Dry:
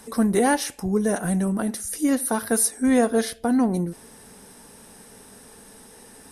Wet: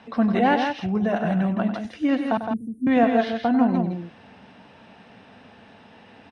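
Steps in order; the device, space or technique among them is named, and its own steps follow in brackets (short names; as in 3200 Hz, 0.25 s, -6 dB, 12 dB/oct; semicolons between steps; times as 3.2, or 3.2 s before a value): 2.37–2.87 inverse Chebyshev band-stop 820–4800 Hz, stop band 60 dB; guitar cabinet (speaker cabinet 96–3600 Hz, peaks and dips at 99 Hz +6 dB, 420 Hz -8 dB, 690 Hz +6 dB, 2700 Hz +7 dB); loudspeakers at several distances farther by 33 m -11 dB, 56 m -6 dB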